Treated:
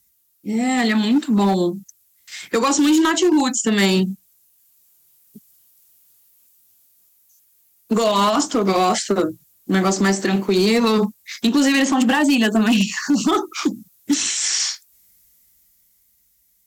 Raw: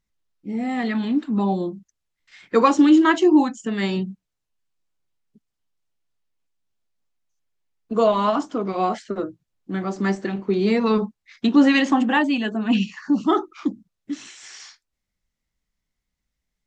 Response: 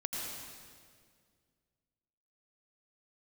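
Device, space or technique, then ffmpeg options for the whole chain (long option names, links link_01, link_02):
FM broadcast chain: -filter_complex "[0:a]highpass=44,dynaudnorm=framelen=140:gausssize=21:maxgain=8dB,acrossover=split=150|1900|6500[link_01][link_02][link_03][link_04];[link_01]acompressor=threshold=-38dB:ratio=4[link_05];[link_02]acompressor=threshold=-16dB:ratio=4[link_06];[link_03]acompressor=threshold=-32dB:ratio=4[link_07];[link_04]acompressor=threshold=-53dB:ratio=4[link_08];[link_05][link_06][link_07][link_08]amix=inputs=4:normalize=0,aemphasis=mode=production:type=50fm,alimiter=limit=-14dB:level=0:latency=1:release=105,asoftclip=type=hard:threshold=-17dB,lowpass=frequency=15000:width=0.5412,lowpass=frequency=15000:width=1.3066,aemphasis=mode=production:type=50fm,volume=6dB"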